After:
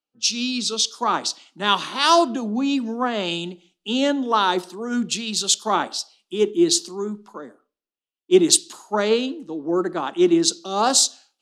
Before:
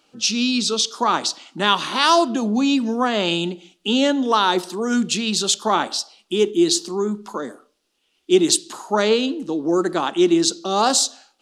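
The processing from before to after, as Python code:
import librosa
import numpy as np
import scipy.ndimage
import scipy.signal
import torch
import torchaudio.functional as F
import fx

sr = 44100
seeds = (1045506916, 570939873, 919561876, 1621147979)

y = fx.band_widen(x, sr, depth_pct=70)
y = F.gain(torch.from_numpy(y), -2.5).numpy()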